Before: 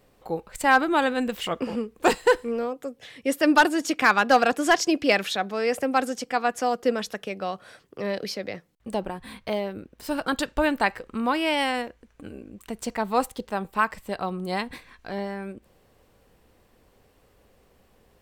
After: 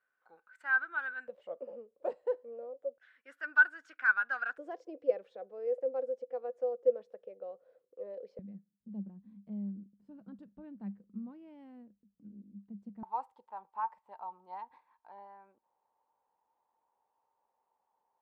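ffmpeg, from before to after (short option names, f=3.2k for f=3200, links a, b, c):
-af "asetnsamples=n=441:p=0,asendcmd='1.28 bandpass f 560;2.98 bandpass f 1500;4.58 bandpass f 510;8.39 bandpass f 200;13.03 bandpass f 900',bandpass=f=1.5k:t=q:w=17:csg=0"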